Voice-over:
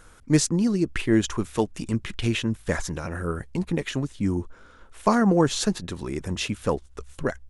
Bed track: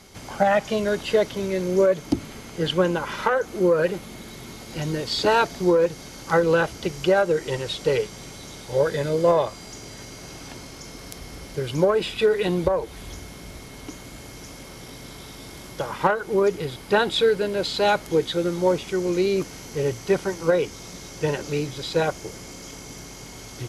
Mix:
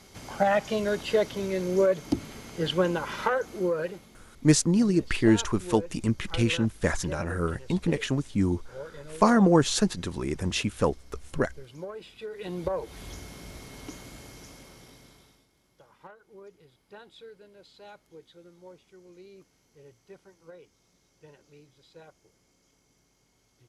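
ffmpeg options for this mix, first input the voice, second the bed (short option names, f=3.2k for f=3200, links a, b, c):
-filter_complex "[0:a]adelay=4150,volume=0dB[a];[1:a]volume=11.5dB,afade=t=out:st=3.24:d=0.99:silence=0.16788,afade=t=in:st=12.31:d=0.72:silence=0.16788,afade=t=out:st=13.94:d=1.53:silence=0.0595662[b];[a][b]amix=inputs=2:normalize=0"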